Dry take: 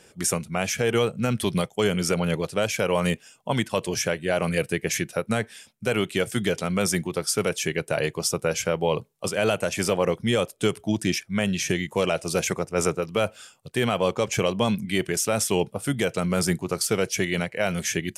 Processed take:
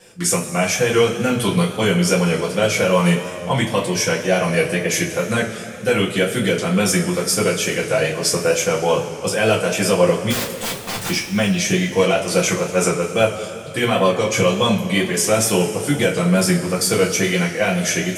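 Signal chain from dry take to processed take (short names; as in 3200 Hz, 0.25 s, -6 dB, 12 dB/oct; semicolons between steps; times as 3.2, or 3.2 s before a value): 10.3–11.1 wrapped overs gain 25.5 dB; two-slope reverb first 0.23 s, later 2.9 s, from -18 dB, DRR -6 dB; wow and flutter 40 cents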